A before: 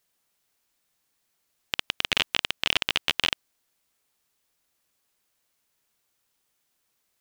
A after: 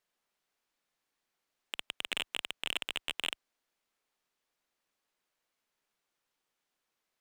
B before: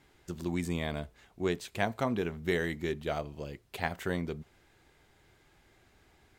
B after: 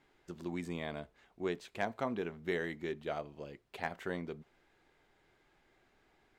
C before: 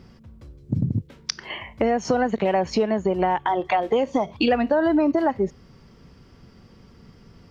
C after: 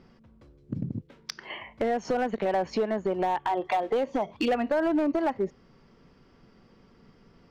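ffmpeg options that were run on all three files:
ffmpeg -i in.wav -af "lowpass=frequency=2900:poles=1,equalizer=frequency=76:width=0.68:gain=-11.5,asoftclip=type=hard:threshold=-16.5dB,volume=-3.5dB" out.wav

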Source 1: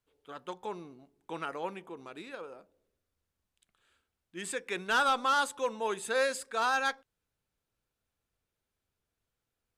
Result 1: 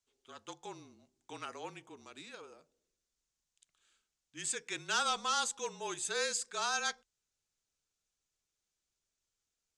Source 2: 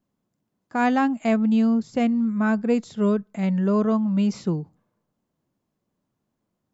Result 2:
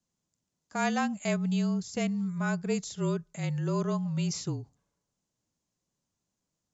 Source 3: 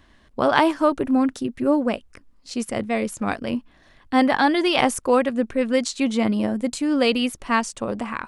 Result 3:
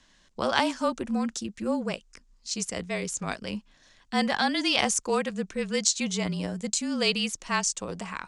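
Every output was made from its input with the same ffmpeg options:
ffmpeg -i in.wav -af "lowpass=frequency=6800:width_type=q:width=2.5,highshelf=frequency=2700:gain=11,afreqshift=-34,volume=-9dB" out.wav

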